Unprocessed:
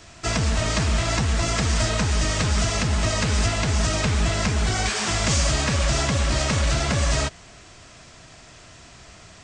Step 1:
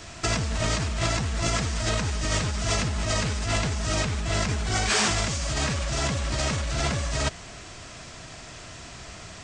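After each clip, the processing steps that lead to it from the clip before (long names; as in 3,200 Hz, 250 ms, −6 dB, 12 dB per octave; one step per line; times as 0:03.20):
compressor whose output falls as the input rises −26 dBFS, ratio −1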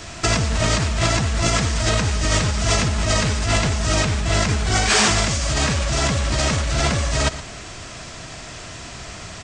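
single-tap delay 118 ms −14.5 dB
level +6.5 dB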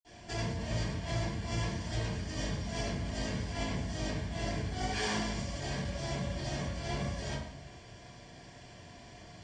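notch comb filter 1,300 Hz
convolution reverb RT60 0.65 s, pre-delay 46 ms
level +3 dB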